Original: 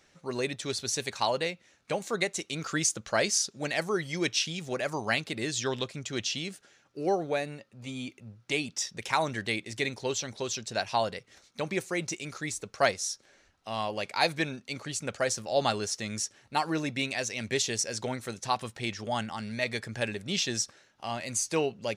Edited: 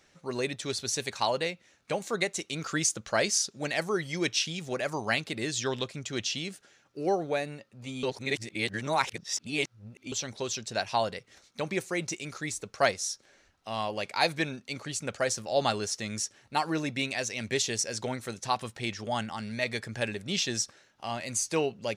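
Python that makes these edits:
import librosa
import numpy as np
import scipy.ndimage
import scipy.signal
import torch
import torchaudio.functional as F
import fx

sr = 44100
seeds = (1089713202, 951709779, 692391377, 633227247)

y = fx.edit(x, sr, fx.reverse_span(start_s=8.03, length_s=2.09), tone=tone)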